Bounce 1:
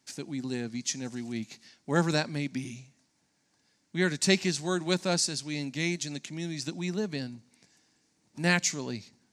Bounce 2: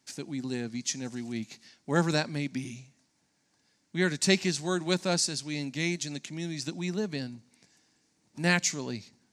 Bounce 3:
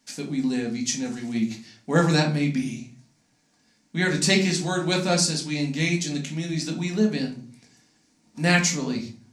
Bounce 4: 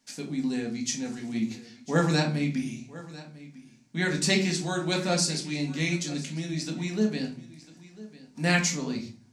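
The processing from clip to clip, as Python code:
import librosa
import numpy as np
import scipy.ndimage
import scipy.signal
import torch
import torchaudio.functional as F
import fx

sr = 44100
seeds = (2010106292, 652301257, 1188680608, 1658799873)

y1 = x
y2 = fx.room_shoebox(y1, sr, seeds[0], volume_m3=310.0, walls='furnished', distance_m=1.8)
y2 = F.gain(torch.from_numpy(y2), 3.0).numpy()
y3 = y2 + 10.0 ** (-18.5 / 20.0) * np.pad(y2, (int(998 * sr / 1000.0), 0))[:len(y2)]
y3 = F.gain(torch.from_numpy(y3), -4.0).numpy()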